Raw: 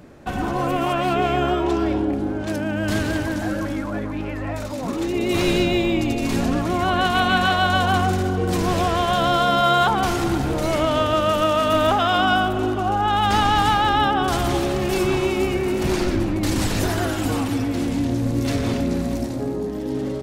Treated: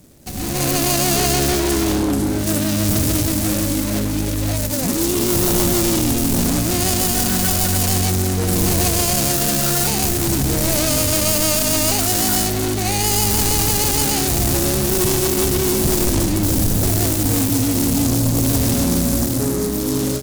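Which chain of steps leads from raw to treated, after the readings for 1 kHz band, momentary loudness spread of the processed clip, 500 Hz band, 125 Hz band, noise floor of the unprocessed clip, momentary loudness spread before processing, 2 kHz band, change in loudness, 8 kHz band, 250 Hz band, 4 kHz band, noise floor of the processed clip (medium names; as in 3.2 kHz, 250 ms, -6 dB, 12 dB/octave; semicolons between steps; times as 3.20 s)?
-6.5 dB, 4 LU, -0.5 dB, +5.5 dB, -28 dBFS, 8 LU, -3.5 dB, +4.0 dB, +18.5 dB, +3.0 dB, +4.0 dB, -21 dBFS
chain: median filter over 41 samples; sine folder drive 8 dB, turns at -9.5 dBFS; pre-emphasis filter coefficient 0.8; level rider gain up to 11.5 dB; hard clipper -11 dBFS, distortion -23 dB; tone controls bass +5 dB, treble +14 dB; trim -4.5 dB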